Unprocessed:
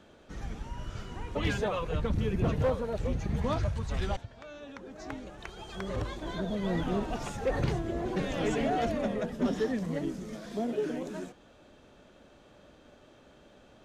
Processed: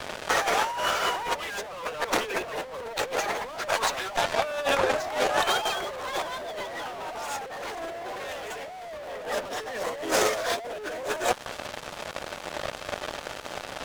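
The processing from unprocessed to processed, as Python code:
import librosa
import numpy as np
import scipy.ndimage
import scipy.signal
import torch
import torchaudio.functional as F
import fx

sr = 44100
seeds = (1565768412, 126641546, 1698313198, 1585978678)

p1 = scipy.signal.sosfilt(scipy.signal.butter(4, 570.0, 'highpass', fs=sr, output='sos'), x)
p2 = fx.fuzz(p1, sr, gain_db=50.0, gate_db=-58.0)
p3 = p1 + F.gain(torch.from_numpy(p2), -5.5).numpy()
p4 = fx.high_shelf(p3, sr, hz=2200.0, db=-6.0)
p5 = fx.over_compress(p4, sr, threshold_db=-28.0, ratio=-0.5)
y = fx.buffer_crackle(p5, sr, first_s=0.31, period_s=0.19, block=512, kind='repeat')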